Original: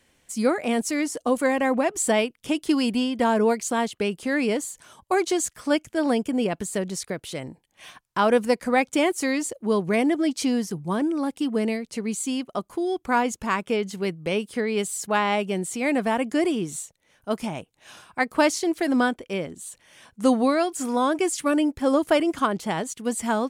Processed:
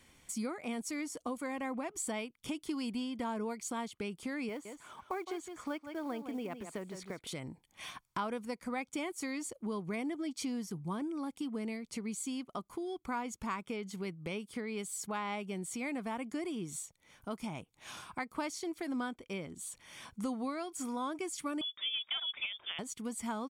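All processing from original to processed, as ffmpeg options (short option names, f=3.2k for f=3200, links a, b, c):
-filter_complex "[0:a]asettb=1/sr,asplit=3[a][b][c];[a]atrim=end=4.494[d];[b]atrim=start=4.49:end=7.27,asetpts=PTS-STARTPTS,afade=t=in:d=0.004:c=qsin,afade=t=out:st=2.776:d=0.004:c=qsin,bass=f=250:g=-8,treble=f=4k:g=-15,acrusher=bits=7:mode=log:mix=0:aa=0.000001,aecho=1:1:161:0.266,atrim=end_sample=122598[e];[c]atrim=start=7.266[f];[d][e]acrossfade=d=0.004:c1=hsin:c2=qsin[g];[g][f]acrossfade=d=0.004:c1=qsin:c2=hsin,asettb=1/sr,asplit=3[h][i][j];[h]atrim=end=21.614[k];[i]atrim=start=21.61:end=22.79,asetpts=PTS-STARTPTS,afade=t=in:d=0.004:c=qsin,afade=t=out:st=1.176:d=0.004:c=qsin,equalizer=f=150:w=0.95:g=-14.5,asoftclip=type=hard:threshold=-15dB,lowpass=f=3.1k:t=q:w=0.5098,lowpass=f=3.1k:t=q:w=0.6013,lowpass=f=3.1k:t=q:w=0.9,lowpass=f=3.1k:t=q:w=2.563,afreqshift=-3700[l];[j]atrim=start=22.786[m];[k][l]acrossfade=d=0.004:c1=hsin:c2=qsin[n];[n][m]acrossfade=d=0.004:c1=qsin:c2=hsin,acompressor=threshold=-43dB:ratio=2.5,aecho=1:1:0.9:0.35"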